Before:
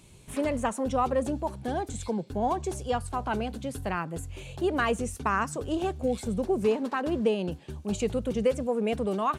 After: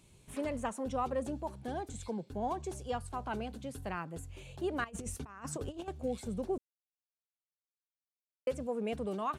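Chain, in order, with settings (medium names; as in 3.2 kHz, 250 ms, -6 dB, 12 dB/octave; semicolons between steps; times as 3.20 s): 4.84–5.88 s: compressor with a negative ratio -33 dBFS, ratio -0.5; 6.58–8.47 s: mute; trim -8 dB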